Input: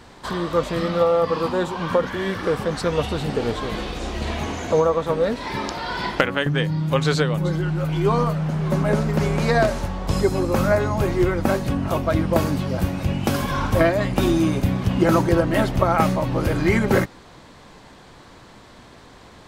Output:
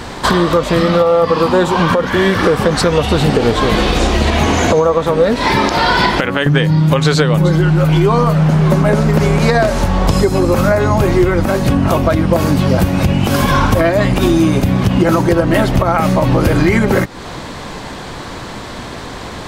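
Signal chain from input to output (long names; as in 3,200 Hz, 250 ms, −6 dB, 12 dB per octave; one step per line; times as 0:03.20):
downward compressor, threshold −27 dBFS, peak gain reduction 14.5 dB
boost into a limiter +19.5 dB
level −1 dB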